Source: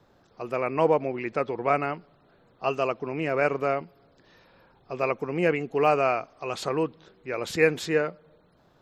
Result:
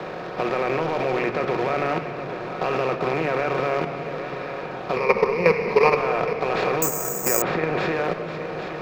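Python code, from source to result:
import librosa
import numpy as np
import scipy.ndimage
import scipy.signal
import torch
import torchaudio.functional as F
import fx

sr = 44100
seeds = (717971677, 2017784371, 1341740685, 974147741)

p1 = fx.bin_compress(x, sr, power=0.4)
p2 = fx.quant_companded(p1, sr, bits=4)
p3 = fx.ripple_eq(p2, sr, per_octave=0.86, db=14, at=(4.96, 5.96))
p4 = fx.level_steps(p3, sr, step_db=14)
p5 = fx.air_absorb(p4, sr, metres=250.0)
p6 = p5 + fx.echo_single(p5, sr, ms=817, db=-15.0, dry=0)
p7 = fx.room_shoebox(p6, sr, seeds[0], volume_m3=2500.0, walls='mixed', distance_m=1.0)
p8 = fx.resample_bad(p7, sr, factor=6, down='filtered', up='zero_stuff', at=(6.82, 7.42))
p9 = fx.band_squash(p8, sr, depth_pct=40)
y = p9 * 10.0 ** (4.5 / 20.0)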